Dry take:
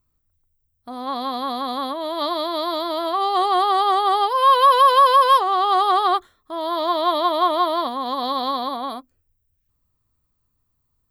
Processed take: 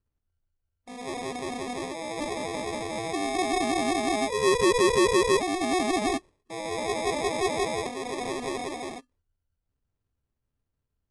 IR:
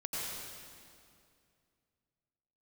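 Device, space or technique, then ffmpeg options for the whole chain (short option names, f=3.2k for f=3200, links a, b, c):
crushed at another speed: -af "asetrate=88200,aresample=44100,acrusher=samples=15:mix=1:aa=0.000001,asetrate=22050,aresample=44100,volume=-8dB"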